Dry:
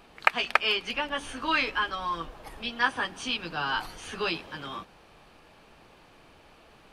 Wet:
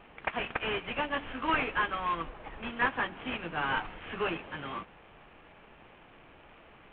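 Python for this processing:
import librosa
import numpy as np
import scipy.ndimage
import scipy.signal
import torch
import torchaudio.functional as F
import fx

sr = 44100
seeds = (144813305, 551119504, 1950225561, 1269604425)

y = fx.cvsd(x, sr, bps=16000)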